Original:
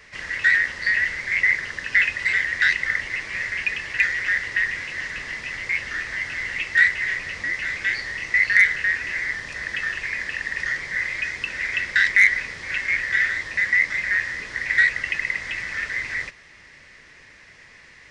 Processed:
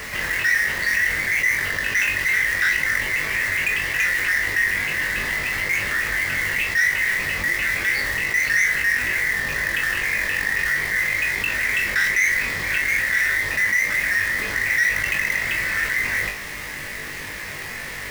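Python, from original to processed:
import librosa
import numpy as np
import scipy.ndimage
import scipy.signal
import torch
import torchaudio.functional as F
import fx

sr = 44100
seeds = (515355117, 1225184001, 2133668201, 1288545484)

y = fx.high_shelf(x, sr, hz=3700.0, db=-7.5)
y = fx.quant_companded(y, sr, bits=4)
y = 10.0 ** (-16.5 / 20.0) * np.tanh(y / 10.0 ** (-16.5 / 20.0))
y = fx.room_flutter(y, sr, wall_m=3.5, rt60_s=0.22)
y = fx.env_flatten(y, sr, amount_pct=50)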